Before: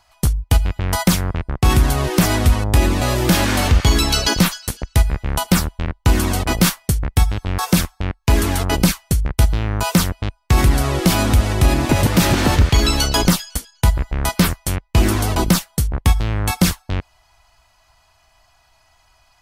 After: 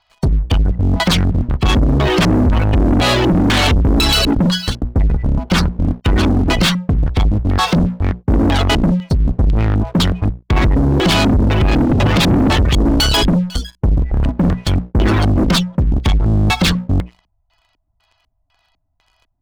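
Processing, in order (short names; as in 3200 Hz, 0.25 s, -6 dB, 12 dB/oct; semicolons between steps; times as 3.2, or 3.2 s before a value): notches 60/120/180/240 Hz; spectral gate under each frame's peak -25 dB strong; LFO low-pass square 2 Hz 270–3600 Hz; limiter -8.5 dBFS, peak gain reduction 8.5 dB; sample leveller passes 3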